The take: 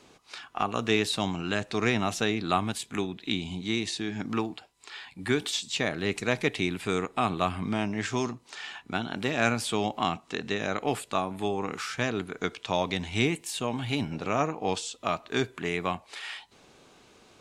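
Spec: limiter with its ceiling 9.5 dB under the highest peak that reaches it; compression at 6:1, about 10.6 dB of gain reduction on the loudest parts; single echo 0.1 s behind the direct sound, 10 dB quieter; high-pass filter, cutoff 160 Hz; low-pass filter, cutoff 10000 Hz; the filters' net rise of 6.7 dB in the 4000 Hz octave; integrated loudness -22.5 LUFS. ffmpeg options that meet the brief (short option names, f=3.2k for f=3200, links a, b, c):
-af "highpass=160,lowpass=10k,equalizer=f=4k:t=o:g=8,acompressor=threshold=-30dB:ratio=6,alimiter=limit=-23dB:level=0:latency=1,aecho=1:1:100:0.316,volume=13.5dB"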